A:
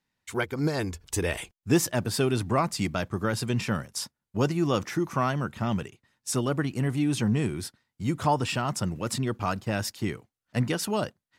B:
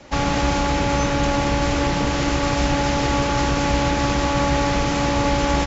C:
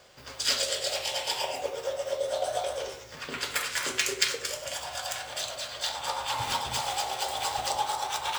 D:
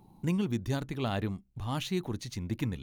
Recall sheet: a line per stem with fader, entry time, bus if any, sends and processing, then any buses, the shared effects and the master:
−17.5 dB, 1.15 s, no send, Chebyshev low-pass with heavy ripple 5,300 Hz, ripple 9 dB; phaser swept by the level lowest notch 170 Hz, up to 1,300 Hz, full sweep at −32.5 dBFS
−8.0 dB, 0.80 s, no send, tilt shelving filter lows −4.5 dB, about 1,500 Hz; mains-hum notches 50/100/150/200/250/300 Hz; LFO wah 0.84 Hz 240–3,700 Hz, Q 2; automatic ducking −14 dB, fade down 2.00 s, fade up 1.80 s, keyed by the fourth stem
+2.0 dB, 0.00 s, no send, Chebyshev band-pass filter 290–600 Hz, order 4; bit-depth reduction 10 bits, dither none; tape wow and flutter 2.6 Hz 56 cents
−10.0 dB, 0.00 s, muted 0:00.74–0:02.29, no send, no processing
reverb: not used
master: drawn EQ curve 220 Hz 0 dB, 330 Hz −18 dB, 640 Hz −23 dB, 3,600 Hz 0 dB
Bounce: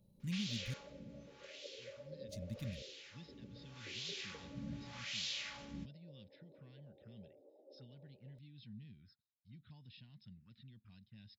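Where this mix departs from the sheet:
stem A: entry 1.15 s → 1.45 s
stem B: entry 0.80 s → 0.20 s
stem C: missing bit-depth reduction 10 bits, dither none

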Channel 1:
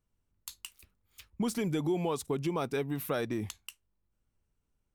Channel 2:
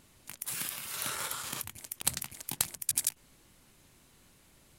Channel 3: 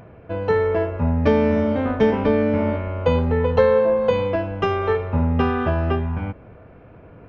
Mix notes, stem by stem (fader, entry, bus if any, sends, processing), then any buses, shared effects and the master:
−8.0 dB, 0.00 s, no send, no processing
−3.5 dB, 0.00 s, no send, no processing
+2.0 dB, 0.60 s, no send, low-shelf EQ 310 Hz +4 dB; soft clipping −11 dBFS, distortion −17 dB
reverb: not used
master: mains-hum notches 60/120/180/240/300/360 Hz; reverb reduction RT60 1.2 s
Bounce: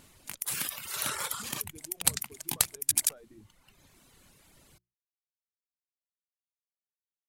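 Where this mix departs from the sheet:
stem 1 −8.0 dB → −18.5 dB
stem 2 −3.5 dB → +4.5 dB
stem 3: muted

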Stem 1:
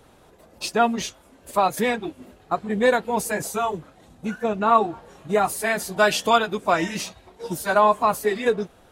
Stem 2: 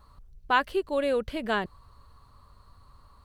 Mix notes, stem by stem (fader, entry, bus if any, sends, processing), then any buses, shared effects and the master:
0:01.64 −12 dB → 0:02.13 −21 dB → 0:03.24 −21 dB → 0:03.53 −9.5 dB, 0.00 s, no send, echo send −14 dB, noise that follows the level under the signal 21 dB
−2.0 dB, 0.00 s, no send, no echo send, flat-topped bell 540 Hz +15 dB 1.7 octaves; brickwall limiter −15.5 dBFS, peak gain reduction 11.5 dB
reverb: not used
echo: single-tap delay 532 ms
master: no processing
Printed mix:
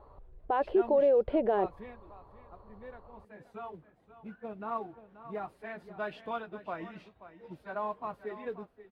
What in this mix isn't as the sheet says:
stem 1 −12.0 dB → −19.0 dB
master: extra high-frequency loss of the air 460 metres

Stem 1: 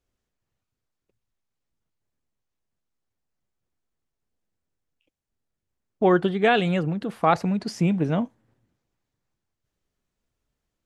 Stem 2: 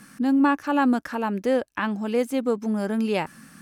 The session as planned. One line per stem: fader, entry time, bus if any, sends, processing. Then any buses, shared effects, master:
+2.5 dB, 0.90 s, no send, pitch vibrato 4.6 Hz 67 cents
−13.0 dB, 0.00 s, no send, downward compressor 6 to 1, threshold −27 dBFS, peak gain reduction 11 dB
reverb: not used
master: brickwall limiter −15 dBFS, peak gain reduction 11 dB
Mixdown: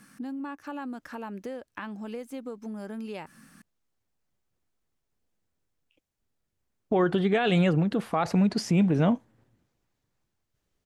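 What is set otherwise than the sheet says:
stem 1: missing pitch vibrato 4.6 Hz 67 cents
stem 2 −13.0 dB → −7.0 dB

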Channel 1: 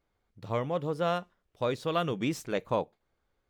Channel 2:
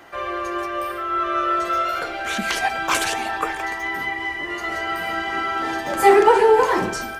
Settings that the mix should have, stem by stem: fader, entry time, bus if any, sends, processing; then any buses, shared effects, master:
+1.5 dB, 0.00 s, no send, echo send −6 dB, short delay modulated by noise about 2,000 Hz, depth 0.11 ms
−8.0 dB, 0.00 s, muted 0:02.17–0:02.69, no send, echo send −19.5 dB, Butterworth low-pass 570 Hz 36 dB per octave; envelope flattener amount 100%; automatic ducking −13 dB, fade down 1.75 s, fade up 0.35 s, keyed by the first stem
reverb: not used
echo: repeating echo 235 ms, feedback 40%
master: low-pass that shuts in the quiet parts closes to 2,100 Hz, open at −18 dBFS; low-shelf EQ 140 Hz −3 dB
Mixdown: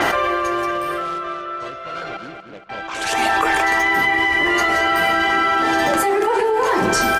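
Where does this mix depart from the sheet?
stem 1 +1.5 dB → −8.5 dB
stem 2: missing Butterworth low-pass 570 Hz 36 dB per octave

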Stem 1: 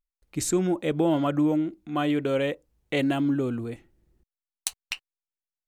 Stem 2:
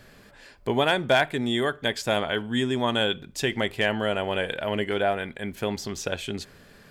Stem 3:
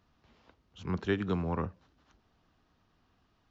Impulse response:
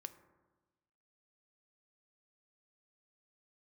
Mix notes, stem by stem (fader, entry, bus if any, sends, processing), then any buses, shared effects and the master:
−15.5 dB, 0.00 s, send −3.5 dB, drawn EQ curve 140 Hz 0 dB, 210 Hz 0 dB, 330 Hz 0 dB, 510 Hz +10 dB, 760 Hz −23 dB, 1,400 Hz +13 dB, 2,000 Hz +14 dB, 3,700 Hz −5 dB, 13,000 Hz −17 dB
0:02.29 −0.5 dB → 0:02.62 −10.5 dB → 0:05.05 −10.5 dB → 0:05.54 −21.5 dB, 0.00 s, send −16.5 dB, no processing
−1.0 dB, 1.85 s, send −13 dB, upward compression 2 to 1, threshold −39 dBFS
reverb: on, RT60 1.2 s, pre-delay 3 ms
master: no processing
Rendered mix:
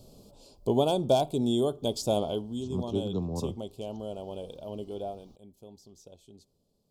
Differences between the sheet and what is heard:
stem 1: muted
master: extra Butterworth band-reject 1,800 Hz, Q 0.5

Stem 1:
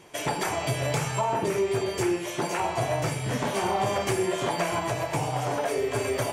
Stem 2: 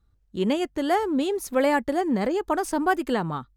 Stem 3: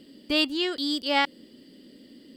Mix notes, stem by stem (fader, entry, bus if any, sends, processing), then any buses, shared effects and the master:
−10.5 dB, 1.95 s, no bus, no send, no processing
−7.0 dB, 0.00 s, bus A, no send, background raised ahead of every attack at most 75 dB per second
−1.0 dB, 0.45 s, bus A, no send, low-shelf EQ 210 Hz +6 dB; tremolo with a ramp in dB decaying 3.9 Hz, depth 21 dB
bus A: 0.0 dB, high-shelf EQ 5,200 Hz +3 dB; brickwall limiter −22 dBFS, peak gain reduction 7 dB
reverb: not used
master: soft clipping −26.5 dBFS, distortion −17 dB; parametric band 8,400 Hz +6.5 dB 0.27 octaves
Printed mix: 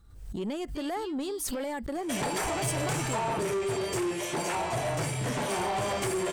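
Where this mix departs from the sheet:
stem 1 −10.5 dB → +1.5 dB
stem 3 −1.0 dB → −12.0 dB

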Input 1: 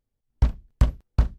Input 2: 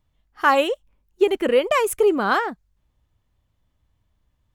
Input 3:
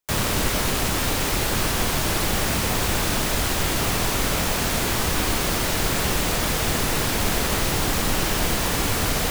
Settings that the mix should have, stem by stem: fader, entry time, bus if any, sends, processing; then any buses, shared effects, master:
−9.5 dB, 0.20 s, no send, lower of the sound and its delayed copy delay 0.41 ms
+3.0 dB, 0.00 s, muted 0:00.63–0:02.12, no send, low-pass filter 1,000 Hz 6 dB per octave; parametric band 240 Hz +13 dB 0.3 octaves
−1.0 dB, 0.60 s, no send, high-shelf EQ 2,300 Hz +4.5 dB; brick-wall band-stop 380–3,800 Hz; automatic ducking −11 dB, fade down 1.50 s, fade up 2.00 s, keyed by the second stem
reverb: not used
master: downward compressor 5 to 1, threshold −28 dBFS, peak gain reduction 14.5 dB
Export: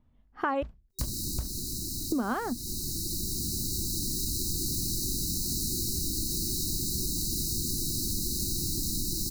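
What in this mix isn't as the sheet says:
stem 1: missing lower of the sound and its delayed copy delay 0.41 ms
stem 3: entry 0.60 s → 0.90 s

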